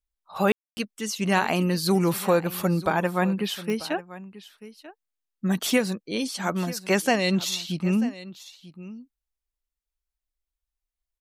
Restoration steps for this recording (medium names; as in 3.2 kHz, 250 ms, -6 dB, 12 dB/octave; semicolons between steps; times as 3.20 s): de-click; room tone fill 0.52–0.77 s; inverse comb 939 ms -17 dB